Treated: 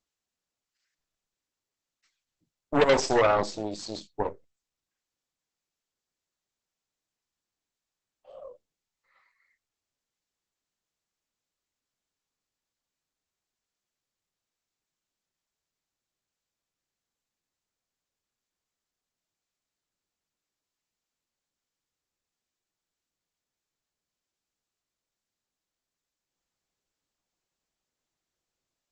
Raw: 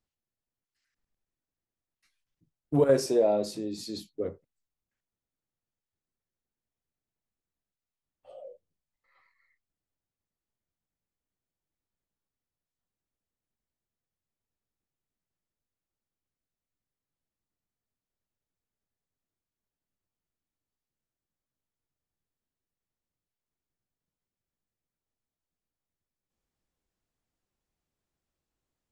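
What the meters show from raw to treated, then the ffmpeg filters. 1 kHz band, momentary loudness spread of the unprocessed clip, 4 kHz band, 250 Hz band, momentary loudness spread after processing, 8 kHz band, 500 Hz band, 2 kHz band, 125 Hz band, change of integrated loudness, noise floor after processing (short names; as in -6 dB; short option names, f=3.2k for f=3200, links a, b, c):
+11.0 dB, 14 LU, +6.0 dB, -1.0 dB, 14 LU, +3.5 dB, +0.5 dB, +14.5 dB, -2.5 dB, +2.0 dB, under -85 dBFS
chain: -af "aeval=exprs='0.282*(cos(1*acos(clip(val(0)/0.282,-1,1)))-cos(1*PI/2))+0.00251*(cos(3*acos(clip(val(0)/0.282,-1,1)))-cos(3*PI/2))+0.02*(cos(4*acos(clip(val(0)/0.282,-1,1)))-cos(4*PI/2))+0.0708*(cos(8*acos(clip(val(0)/0.282,-1,1)))-cos(8*PI/2))':c=same,bass=f=250:g=-8,treble=f=4k:g=3,volume=1.5dB" -ar 48000 -c:a libopus -b:a 12k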